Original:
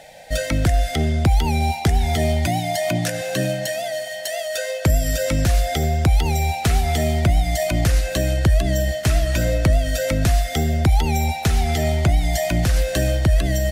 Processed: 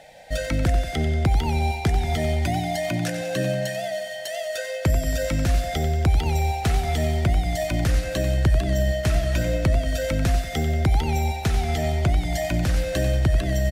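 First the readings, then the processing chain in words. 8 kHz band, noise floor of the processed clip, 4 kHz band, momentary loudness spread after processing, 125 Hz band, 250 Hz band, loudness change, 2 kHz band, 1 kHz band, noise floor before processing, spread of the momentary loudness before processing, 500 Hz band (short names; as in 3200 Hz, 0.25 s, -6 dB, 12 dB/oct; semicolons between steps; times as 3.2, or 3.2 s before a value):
-7.0 dB, -32 dBFS, -5.0 dB, 4 LU, -3.0 dB, -3.0 dB, -3.5 dB, -3.5 dB, -3.5 dB, -29 dBFS, 5 LU, -3.0 dB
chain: high shelf 5700 Hz -6 dB; on a send: feedback echo 92 ms, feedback 56%, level -11 dB; on the sum: gain -3.5 dB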